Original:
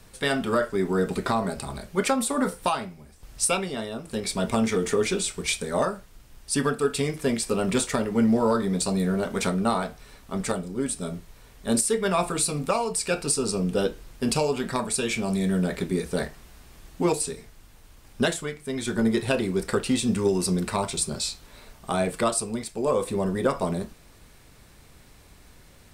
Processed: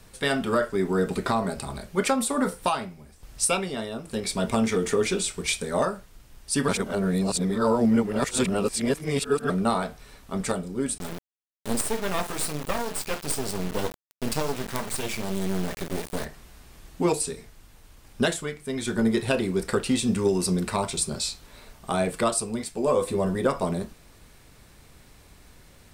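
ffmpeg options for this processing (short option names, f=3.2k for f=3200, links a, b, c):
-filter_complex "[0:a]asettb=1/sr,asplit=3[a][b][c];[a]atrim=end=10.984[d];[b]atrim=start=10.98:end=16.25,asetpts=PTS-STARTPTS,afade=t=in:d=0.004:c=qsin,afade=t=out:st=5.266:d=0.004:c=qsin,acrusher=bits=3:dc=4:mix=0:aa=0.000001[e];[c]atrim=start=16.246[f];[d][e]acrossfade=d=0.004:c1=hsin:c2=qsin[g];[g][f]acrossfade=d=0.004:c1=qsin:c2=hsin,asettb=1/sr,asplit=3[h][i][j];[h]atrim=end=22.584[k];[i]atrim=start=22.58:end=23.36,asetpts=PTS-STARTPTS,afade=t=in:d=0.004:c=qsin,afade=t=out:st=0.776:d=0.004:c=qsin,asplit=2[l][m];[m]adelay=12,volume=-7dB[n];[l][n]amix=inputs=2:normalize=0,atrim=end_sample=34398[o];[j]atrim=start=23.356[p];[k][o]acrossfade=d=0.004:c1=hsin:c2=qsin[q];[q][p]acrossfade=d=0.004:c1=qsin:c2=hsin,asplit=3[r][s][t];[r]atrim=end=6.682[u];[s]atrim=start=6.678:end=9.502,asetpts=PTS-STARTPTS,areverse[v];[t]atrim=start=9.498[w];[u][v]acrossfade=d=0.004:c1=hsin:c2=hsin[x];[x][w]acrossfade=d=0.004:c1=hsin:c2=hsin"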